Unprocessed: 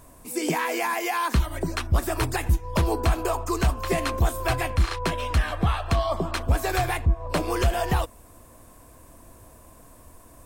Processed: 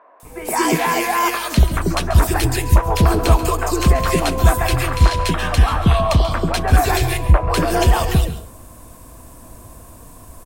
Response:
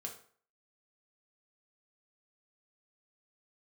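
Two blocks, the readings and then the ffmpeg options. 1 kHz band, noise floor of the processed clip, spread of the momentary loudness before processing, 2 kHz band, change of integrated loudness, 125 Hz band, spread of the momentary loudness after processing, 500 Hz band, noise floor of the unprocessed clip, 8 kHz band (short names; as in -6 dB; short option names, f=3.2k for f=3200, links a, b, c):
+8.0 dB, -42 dBFS, 3 LU, +6.5 dB, +8.5 dB, +9.5 dB, 4 LU, +7.0 dB, -51 dBFS, +9.0 dB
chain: -filter_complex "[0:a]aeval=exprs='val(0)+0.00158*(sin(2*PI*50*n/s)+sin(2*PI*2*50*n/s)/2+sin(2*PI*3*50*n/s)/3+sin(2*PI*4*50*n/s)/4+sin(2*PI*5*50*n/s)/5)':c=same,acrossover=split=490|1900[a][b][c];[c]adelay=200[d];[a]adelay=230[e];[e][b][d]amix=inputs=3:normalize=0,asplit=2[f][g];[1:a]atrim=start_sample=2205,adelay=136[h];[g][h]afir=irnorm=-1:irlink=0,volume=-9dB[i];[f][i]amix=inputs=2:normalize=0,volume=9dB"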